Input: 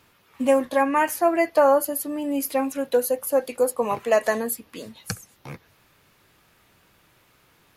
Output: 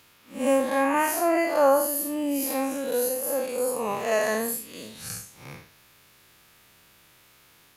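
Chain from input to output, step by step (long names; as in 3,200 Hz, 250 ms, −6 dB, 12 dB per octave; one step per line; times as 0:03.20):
spectrum smeared in time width 149 ms
high-shelf EQ 2,200 Hz +8.5 dB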